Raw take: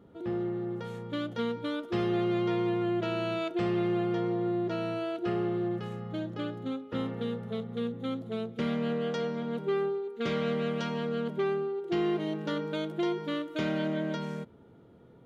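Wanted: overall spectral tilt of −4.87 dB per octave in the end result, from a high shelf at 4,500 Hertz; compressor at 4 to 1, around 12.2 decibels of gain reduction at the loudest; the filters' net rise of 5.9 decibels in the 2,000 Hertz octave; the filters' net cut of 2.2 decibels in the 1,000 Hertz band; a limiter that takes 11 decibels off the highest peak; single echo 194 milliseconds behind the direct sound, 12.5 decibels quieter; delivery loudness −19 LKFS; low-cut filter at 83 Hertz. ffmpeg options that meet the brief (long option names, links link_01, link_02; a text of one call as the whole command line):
ffmpeg -i in.wav -af "highpass=83,equalizer=frequency=1000:width_type=o:gain=-7,equalizer=frequency=2000:width_type=o:gain=9,highshelf=frequency=4500:gain=3.5,acompressor=threshold=-41dB:ratio=4,alimiter=level_in=14.5dB:limit=-24dB:level=0:latency=1,volume=-14.5dB,aecho=1:1:194:0.237,volume=26.5dB" out.wav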